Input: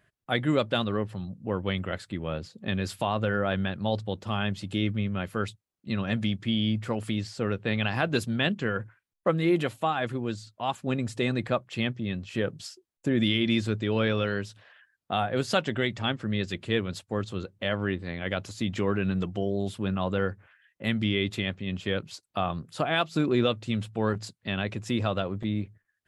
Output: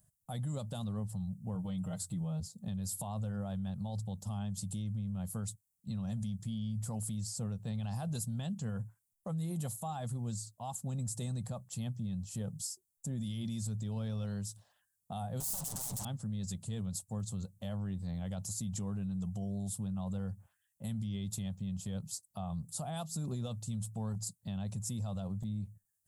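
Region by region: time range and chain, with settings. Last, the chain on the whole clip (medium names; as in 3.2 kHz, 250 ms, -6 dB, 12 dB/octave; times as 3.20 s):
1.55–2.40 s: band-stop 1.7 kHz, Q 14 + comb 6.5 ms, depth 100% + de-hum 45.28 Hz, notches 2
15.40–16.05 s: comb filter that takes the minimum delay 7 ms + overdrive pedal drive 34 dB, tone 1.1 kHz, clips at -15.5 dBFS + spectrum-flattening compressor 2:1
whole clip: FFT filter 190 Hz 0 dB, 330 Hz -21 dB, 810 Hz -7 dB, 1.5 kHz -22 dB, 2.3 kHz -26 dB, 8 kHz +8 dB; peak limiter -31 dBFS; treble shelf 6 kHz +5 dB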